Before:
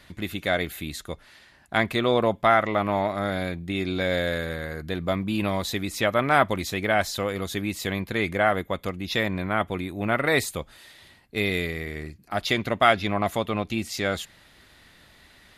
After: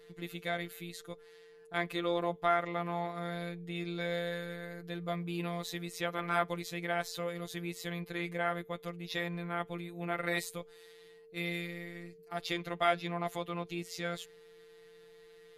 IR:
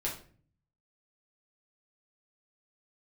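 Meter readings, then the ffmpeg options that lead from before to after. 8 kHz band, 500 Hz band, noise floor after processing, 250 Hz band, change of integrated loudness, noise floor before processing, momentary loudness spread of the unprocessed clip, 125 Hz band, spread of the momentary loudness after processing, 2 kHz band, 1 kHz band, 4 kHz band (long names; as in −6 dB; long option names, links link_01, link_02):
−11.0 dB, −11.0 dB, −57 dBFS, −11.0 dB, −11.0 dB, −55 dBFS, 12 LU, −10.5 dB, 12 LU, −11.5 dB, −10.5 dB, −11.0 dB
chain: -af "afftfilt=real='hypot(re,im)*cos(PI*b)':imag='0':win_size=1024:overlap=0.75,aeval=exprs='val(0)+0.00447*sin(2*PI*450*n/s)':channel_layout=same,volume=-7.5dB"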